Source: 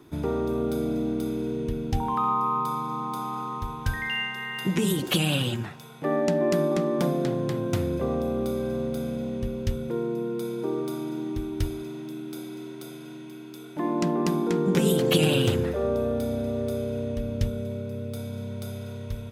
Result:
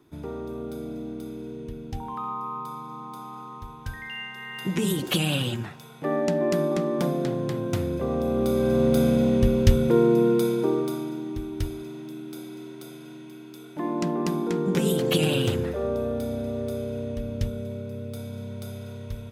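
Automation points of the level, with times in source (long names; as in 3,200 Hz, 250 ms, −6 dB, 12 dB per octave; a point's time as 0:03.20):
0:04.13 −7.5 dB
0:04.85 −0.5 dB
0:08.04 −0.5 dB
0:08.98 +10 dB
0:10.30 +10 dB
0:11.21 −1.5 dB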